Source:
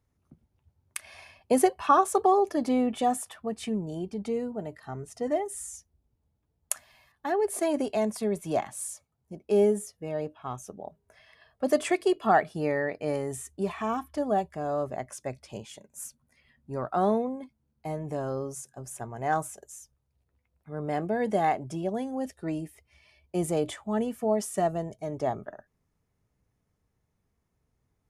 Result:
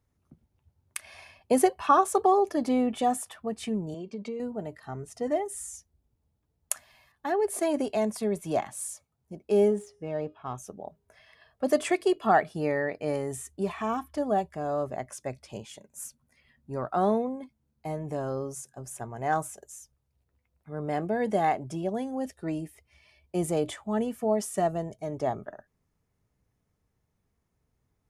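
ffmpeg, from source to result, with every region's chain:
-filter_complex "[0:a]asettb=1/sr,asplit=3[s0][s1][s2];[s0]atrim=end=3.944[s3];[s1]atrim=start=3.94:end=4.4,asetpts=PTS-STARTPTS,afade=t=in:d=0.004:c=qsin,afade=t=out:st=0.456:d=0.004:c=qsin,aecho=1:1:1.8:0.61,atrim=end_sample=20286,acompressor=threshold=0.0224:ratio=5:attack=3.2:release=140:knee=1:detection=peak,highpass=220,equalizer=f=230:t=q:w=4:g=9,equalizer=f=740:t=q:w=4:g=-6,equalizer=f=1500:t=q:w=4:g=-8,equalizer=f=2500:t=q:w=4:g=4,equalizer=f=5600:t=q:w=4:g=-5,lowpass=f=6800:w=0.5412,lowpass=f=6800:w=1.3066[s4];[s2]atrim=start=4.396[s5];[s3][s4]acrossfade=d=0.004:c1=hsin:c2=qsin[s6];[s6][s5]acrossfade=d=0.004:c1=qsin:c2=hsin,asettb=1/sr,asplit=3[s7][s8][s9];[s7]atrim=end=9.684[s10];[s8]atrim=start=9.68:end=10.56,asetpts=PTS-STARTPTS,afade=t=in:d=0.004:c=qsin,afade=t=out:st=0.876:d=0.004:c=qsin,bandreject=f=411.6:t=h:w=4,bandreject=f=823.2:t=h:w=4,bandreject=f=1234.8:t=h:w=4,bandreject=f=1646.4:t=h:w=4,bandreject=f=2058:t=h:w=4,bandreject=f=2469.6:t=h:w=4,bandreject=f=2881.2:t=h:w=4,bandreject=f=3292.8:t=h:w=4,bandreject=f=3704.4:t=h:w=4,bandreject=f=4116:t=h:w=4,bandreject=f=4527.6:t=h:w=4,bandreject=f=4939.2:t=h:w=4,bandreject=f=5350.8:t=h:w=4,bandreject=f=5762.4:t=h:w=4,bandreject=f=6174:t=h:w=4,bandreject=f=6585.6:t=h:w=4,bandreject=f=6997.2:t=h:w=4,bandreject=f=7408.8:t=h:w=4,bandreject=f=7820.4:t=h:w=4,bandreject=f=8232:t=h:w=4,bandreject=f=8643.6:t=h:w=4,bandreject=f=9055.2:t=h:w=4,bandreject=f=9466.8:t=h:w=4,bandreject=f=9878.4:t=h:w=4,bandreject=f=10290:t=h:w=4,bandreject=f=10701.6:t=h:w=4,bandreject=f=11113.2:t=h:w=4,bandreject=f=11524.8:t=h:w=4,bandreject=f=11936.4:t=h:w=4,bandreject=f=12348:t=h:w=4,bandreject=f=12759.6:t=h:w=4,adynamicsmooth=sensitivity=8:basefreq=4100[s11];[s9]atrim=start=10.556[s12];[s10][s11]acrossfade=d=0.004:c1=hsin:c2=qsin[s13];[s13][s12]acrossfade=d=0.004:c1=qsin:c2=hsin"

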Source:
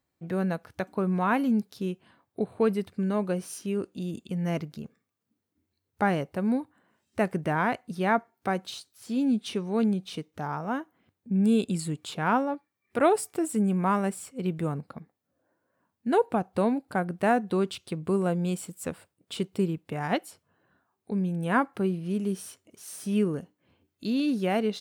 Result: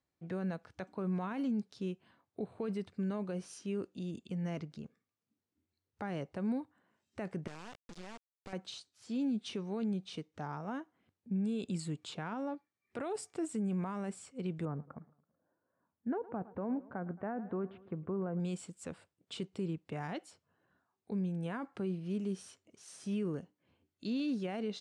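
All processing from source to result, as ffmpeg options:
-filter_complex "[0:a]asettb=1/sr,asplit=3[s0][s1][s2];[s0]atrim=end=7.474[s3];[s1]atrim=start=7.47:end=8.53,asetpts=PTS-STARTPTS,afade=t=in:d=0.004:c=qsin,afade=t=out:st=1.056:d=0.004:c=qsin,lowpass=5700,acompressor=threshold=0.0178:ratio=10:attack=3.2:release=140:knee=1:detection=peak,acrusher=bits=4:dc=4:mix=0:aa=0.000001[s4];[s2]atrim=start=8.526[s5];[s3][s4]acrossfade=d=0.004:c1=hsin:c2=qsin[s6];[s6][s5]acrossfade=d=0.004:c1=qsin:c2=hsin,asettb=1/sr,asplit=3[s7][s8][s9];[s7]atrim=end=14.654[s10];[s8]atrim=start=14.65:end=18.4,asetpts=PTS-STARTPTS,afade=t=in:d=0.004:c=qsin,afade=t=out:st=3.746:d=0.004:c=qsin,lowpass=f=1700:w=0.5412,lowpass=f=1700:w=1.3066,aecho=1:1:110|220|330|440:0.0668|0.0368|0.0202|0.0111,atrim=end_sample=165375[s11];[s9]atrim=start=18.396[s12];[s10][s11]acrossfade=d=0.004:c1=hsin:c2=qsin[s13];[s13][s12]acrossfade=d=0.004:c1=qsin:c2=hsin,lowpass=f=8000:w=0.5412,lowpass=f=8000:w=1.3066,alimiter=limit=0.0891:level=0:latency=1:release=20,acrossover=split=410|3000[s14][s15][s16];[s15]acompressor=threshold=0.0251:ratio=6[s17];[s14][s17][s16]amix=inputs=3:normalize=0,volume=0.447"

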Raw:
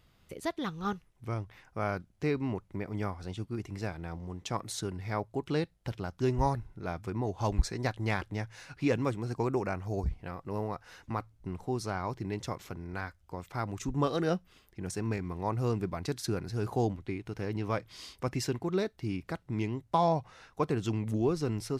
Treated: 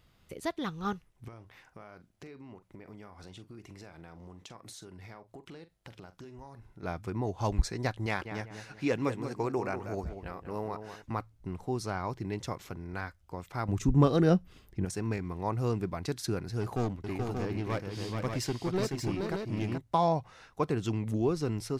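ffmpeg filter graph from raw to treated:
-filter_complex "[0:a]asettb=1/sr,asplit=3[s0][s1][s2];[s0]atrim=end=1.284[s3];[s1]atrim=start=1.28:end=6.83,asetpts=PTS-STARTPTS,afade=t=in:d=0.004:c=qsin,afade=t=out:st=5.546:d=0.004:c=qsin,lowshelf=f=140:g=-9,acompressor=threshold=0.00631:ratio=12:attack=3.2:release=140:knee=1:detection=peak,asplit=2[s4][s5];[s5]adelay=43,volume=0.224[s6];[s4][s6]amix=inputs=2:normalize=0,atrim=end_sample=244755[s7];[s2]atrim=start=6.826[s8];[s3][s7]acrossfade=d=0.004:c1=hsin:c2=qsin[s9];[s9][s8]acrossfade=d=0.004:c1=qsin:c2=hsin,asettb=1/sr,asplit=3[s10][s11][s12];[s10]atrim=end=8.064[s13];[s11]atrim=start=8.06:end=11.02,asetpts=PTS-STARTPTS,afade=t=in:d=0.004:c=qsin,afade=t=out:st=2.956:d=0.004:c=qsin,lowshelf=f=140:g=-9.5,asplit=2[s14][s15];[s15]adelay=191,lowpass=f=2100:p=1,volume=0.376,asplit=2[s16][s17];[s17]adelay=191,lowpass=f=2100:p=1,volume=0.35,asplit=2[s18][s19];[s19]adelay=191,lowpass=f=2100:p=1,volume=0.35,asplit=2[s20][s21];[s21]adelay=191,lowpass=f=2100:p=1,volume=0.35[s22];[s14][s16][s18][s20][s22]amix=inputs=5:normalize=0,atrim=end_sample=130536[s23];[s12]atrim=start=11.016[s24];[s13][s23]acrossfade=d=0.004:c1=hsin:c2=qsin[s25];[s25][s24]acrossfade=d=0.004:c1=qsin:c2=hsin,asettb=1/sr,asplit=3[s26][s27][s28];[s26]atrim=end=13.684[s29];[s27]atrim=start=13.68:end=14.85,asetpts=PTS-STARTPTS,afade=t=in:d=0.004:c=qsin,afade=t=out:st=1.166:d=0.004:c=qsin,lowshelf=f=380:g=10.5,asoftclip=type=hard:threshold=0.266[s30];[s28]atrim=start=14.846[s31];[s29][s30]acrossfade=d=0.004:c1=hsin:c2=qsin[s32];[s32][s31]acrossfade=d=0.004:c1=qsin:c2=hsin,asettb=1/sr,asplit=3[s33][s34][s35];[s33]atrim=end=16.614[s36];[s34]atrim=start=16.61:end=19.78,asetpts=PTS-STARTPTS,afade=t=in:d=0.004:c=qsin,afade=t=out:st=3.166:d=0.004:c=qsin,aeval=exprs='clip(val(0),-1,0.0299)':c=same,aecho=1:1:429|581:0.562|0.531,atrim=end_sample=139797[s37];[s35]atrim=start=19.776[s38];[s36][s37]acrossfade=d=0.004:c1=hsin:c2=qsin[s39];[s39][s38]acrossfade=d=0.004:c1=qsin:c2=hsin"

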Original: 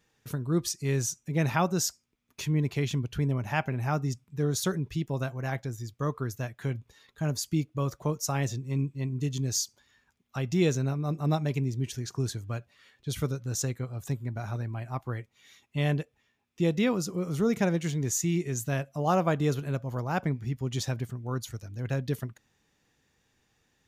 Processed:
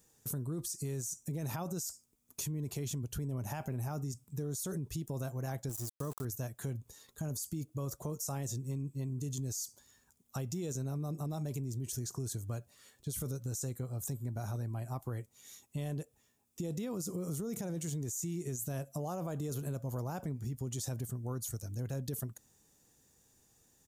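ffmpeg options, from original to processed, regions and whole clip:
-filter_complex "[0:a]asettb=1/sr,asplit=3[s0][s1][s2];[s0]atrim=end=5.694[s3];[s1]atrim=start=5.69:end=6.25,asetpts=PTS-STARTPTS,afade=t=in:d=0.004:c=qsin,afade=t=out:st=0.556:d=0.004:c=qsin,highpass=f=61:p=1,aeval=exprs='val(0)*gte(abs(val(0)),0.00891)':c=same[s4];[s2]atrim=start=6.246[s5];[s3][s4]acrossfade=d=0.004:c1=hsin:c2=qsin[s6];[s6][s5]acrossfade=d=0.004:c1=qsin:c2=hsin,firequalizer=gain_entry='entry(530,0);entry(2100,-10);entry(7900,13)':delay=0.05:min_phase=1,alimiter=level_in=1.41:limit=0.0631:level=0:latency=1:release=19,volume=0.708,acompressor=threshold=0.0141:ratio=3,volume=1.12"

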